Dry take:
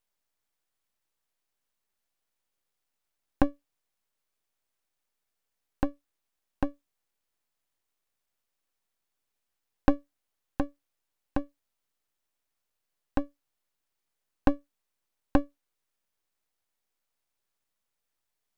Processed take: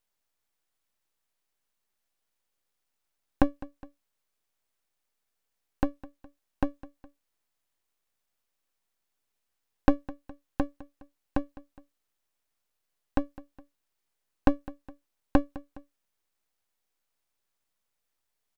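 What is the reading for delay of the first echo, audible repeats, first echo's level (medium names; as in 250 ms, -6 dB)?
207 ms, 2, -19.0 dB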